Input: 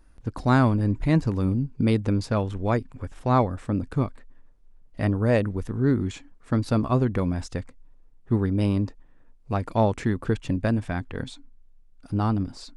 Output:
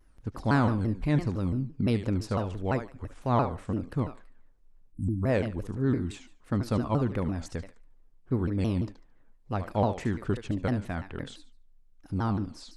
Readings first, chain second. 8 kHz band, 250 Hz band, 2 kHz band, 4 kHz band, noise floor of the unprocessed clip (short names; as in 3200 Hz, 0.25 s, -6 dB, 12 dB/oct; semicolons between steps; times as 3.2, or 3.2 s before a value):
-4.0 dB, -5.0 dB, -4.5 dB, -4.5 dB, -53 dBFS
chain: thinning echo 73 ms, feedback 25%, high-pass 420 Hz, level -8.5 dB; spectral delete 4.92–5.23, 320–7100 Hz; shaped vibrato saw down 5.9 Hz, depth 250 cents; gain -5 dB